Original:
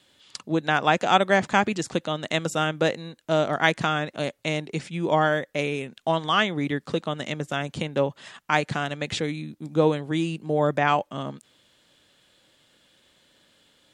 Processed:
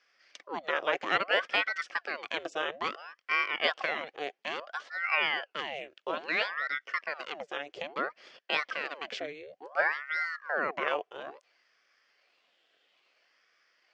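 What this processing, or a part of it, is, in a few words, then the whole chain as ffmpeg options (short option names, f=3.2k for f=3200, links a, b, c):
voice changer toy: -filter_complex "[0:a]aeval=exprs='val(0)*sin(2*PI*940*n/s+940*0.85/0.59*sin(2*PI*0.59*n/s))':c=same,highpass=540,equalizer=f=540:t=q:w=4:g=3,equalizer=f=910:t=q:w=4:g=-10,equalizer=f=1.3k:t=q:w=4:g=-3,equalizer=f=3.9k:t=q:w=4:g=-9,lowpass=f=4.9k:w=0.5412,lowpass=f=4.9k:w=1.3066,asettb=1/sr,asplit=3[a][b][c];[a]atrim=end=9.824[d];[b]atrim=start=9.82:end=10.31,asetpts=PTS-STARTPTS,afade=t=in:d=0.004:c=qsin,afade=t=out:st=0.486:d=0.004:c=qsin,equalizer=f=250:w=0.58:g=-7[e];[c]atrim=start=10.306[f];[d][e]acrossfade=d=0.004:c1=hsin:c2=qsin[g];[g][f]acrossfade=d=0.004:c1=qsin:c2=hsin,volume=-2dB"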